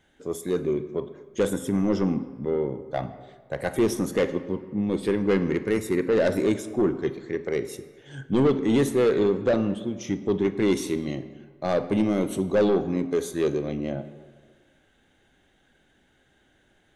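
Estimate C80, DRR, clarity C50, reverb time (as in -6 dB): 14.5 dB, 11.5 dB, 12.5 dB, 1.7 s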